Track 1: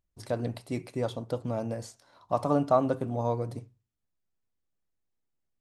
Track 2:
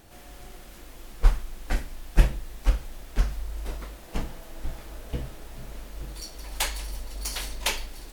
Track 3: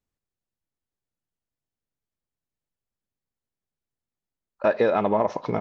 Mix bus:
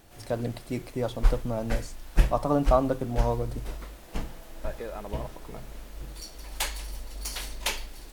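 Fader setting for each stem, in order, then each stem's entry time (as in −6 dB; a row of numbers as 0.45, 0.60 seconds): +1.0, −2.5, −17.0 decibels; 0.00, 0.00, 0.00 seconds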